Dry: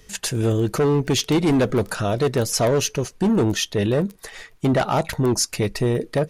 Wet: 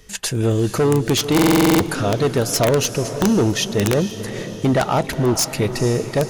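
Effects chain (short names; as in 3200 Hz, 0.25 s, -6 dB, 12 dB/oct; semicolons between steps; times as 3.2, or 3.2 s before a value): diffused feedback echo 0.469 s, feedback 55%, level -11.5 dB; wrapped overs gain 11.5 dB; stuck buffer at 1.34, samples 2048, times 9; gain +2 dB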